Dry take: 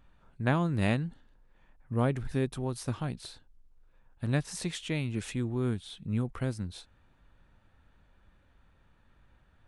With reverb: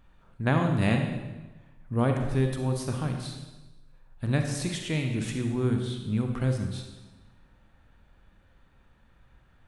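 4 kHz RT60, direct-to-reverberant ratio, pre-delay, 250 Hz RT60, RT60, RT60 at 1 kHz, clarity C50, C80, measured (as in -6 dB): 1.0 s, 3.5 dB, 35 ms, 1.2 s, 1.1 s, 1.1 s, 4.5 dB, 7.0 dB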